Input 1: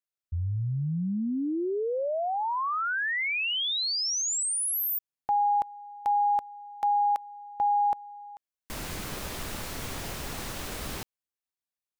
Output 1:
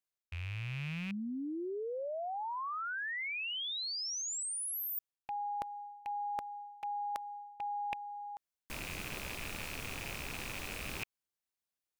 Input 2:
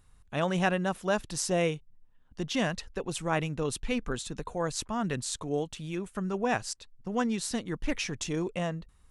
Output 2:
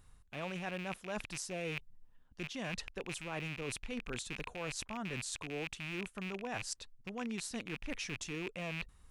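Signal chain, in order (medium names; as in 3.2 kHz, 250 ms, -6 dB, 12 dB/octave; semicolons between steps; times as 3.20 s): rattle on loud lows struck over -45 dBFS, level -22 dBFS; reverse; compression 6:1, threshold -38 dBFS; reverse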